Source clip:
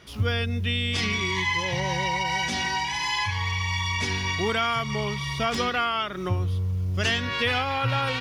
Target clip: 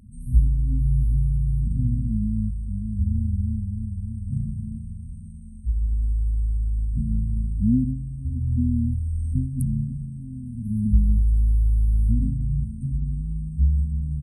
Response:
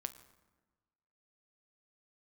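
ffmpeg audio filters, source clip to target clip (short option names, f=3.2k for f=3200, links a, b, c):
-af "asetrate=25442,aresample=44100,afftfilt=real='re*(1-between(b*sr/4096,260,8100))':imag='im*(1-between(b*sr/4096,260,8100))':win_size=4096:overlap=0.75,volume=8dB"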